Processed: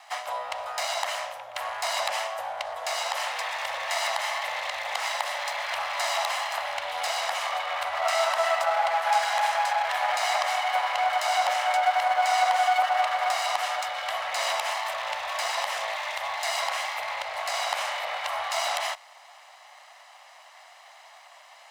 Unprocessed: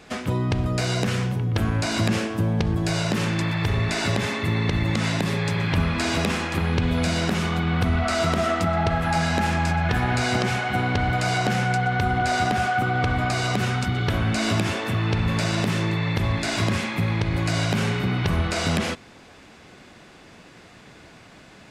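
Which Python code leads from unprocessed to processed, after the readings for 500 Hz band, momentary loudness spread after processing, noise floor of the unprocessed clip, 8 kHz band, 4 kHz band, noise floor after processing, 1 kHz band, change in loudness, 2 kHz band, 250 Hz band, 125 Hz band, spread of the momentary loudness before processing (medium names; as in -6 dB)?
-3.0 dB, 8 LU, -48 dBFS, -0.5 dB, -0.5 dB, -51 dBFS, +2.5 dB, -3.5 dB, -2.5 dB, under -40 dB, under -40 dB, 2 LU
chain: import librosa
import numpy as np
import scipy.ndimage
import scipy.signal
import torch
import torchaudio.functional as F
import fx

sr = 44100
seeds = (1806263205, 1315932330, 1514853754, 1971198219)

y = fx.lower_of_two(x, sr, delay_ms=1.0)
y = scipy.signal.sosfilt(scipy.signal.ellip(4, 1.0, 40, 580.0, 'highpass', fs=sr, output='sos'), y)
y = fx.peak_eq(y, sr, hz=750.0, db=6.0, octaves=0.6)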